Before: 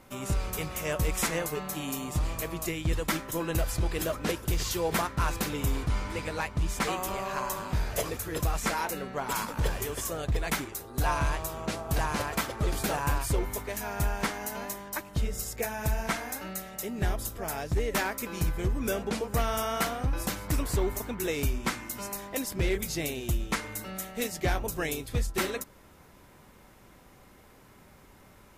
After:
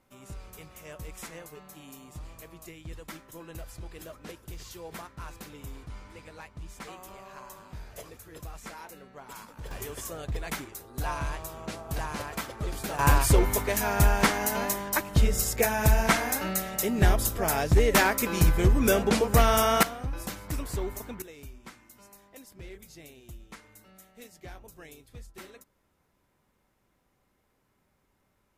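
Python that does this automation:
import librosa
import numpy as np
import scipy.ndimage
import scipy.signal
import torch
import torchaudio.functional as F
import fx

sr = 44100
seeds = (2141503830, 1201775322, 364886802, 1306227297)

y = fx.gain(x, sr, db=fx.steps((0.0, -13.5), (9.71, -4.5), (12.99, 7.5), (19.83, -4.5), (21.22, -17.0)))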